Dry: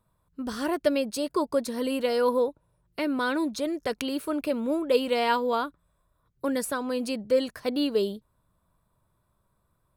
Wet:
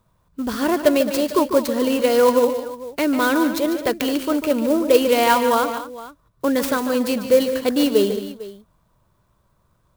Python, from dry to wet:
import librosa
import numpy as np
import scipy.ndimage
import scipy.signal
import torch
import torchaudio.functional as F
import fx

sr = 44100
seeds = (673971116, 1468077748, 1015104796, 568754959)

p1 = x + fx.echo_multitap(x, sr, ms=(146, 215, 451), db=(-10.0, -14.0, -17.0), dry=0)
p2 = fx.clock_jitter(p1, sr, seeds[0], jitter_ms=0.029)
y = p2 * librosa.db_to_amplitude(8.0)